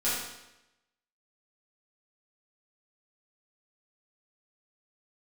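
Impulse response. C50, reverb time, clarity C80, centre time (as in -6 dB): -0.5 dB, 0.90 s, 3.0 dB, 72 ms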